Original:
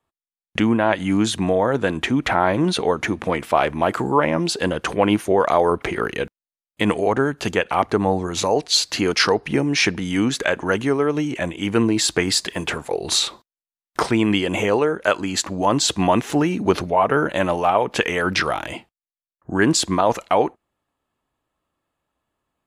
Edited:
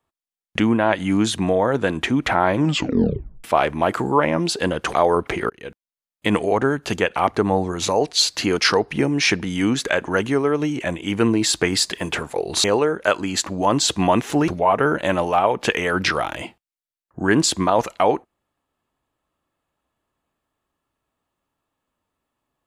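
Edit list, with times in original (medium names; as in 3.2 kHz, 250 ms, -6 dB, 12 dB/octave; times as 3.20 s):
2.57 s: tape stop 0.87 s
4.94–5.49 s: delete
6.05–6.83 s: fade in equal-power
13.19–14.64 s: delete
16.48–16.79 s: delete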